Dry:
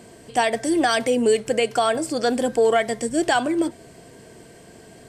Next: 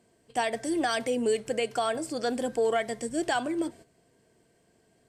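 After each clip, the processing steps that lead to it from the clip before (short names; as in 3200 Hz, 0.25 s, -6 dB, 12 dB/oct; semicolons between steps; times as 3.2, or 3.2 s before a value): gate -39 dBFS, range -12 dB; gain -8 dB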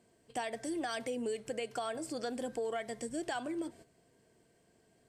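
compressor 2.5:1, threshold -34 dBFS, peak gain reduction 8.5 dB; gain -3 dB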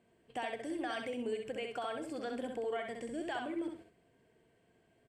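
resonant high shelf 3900 Hz -8.5 dB, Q 1.5; feedback echo 65 ms, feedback 25%, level -4.5 dB; gain -2.5 dB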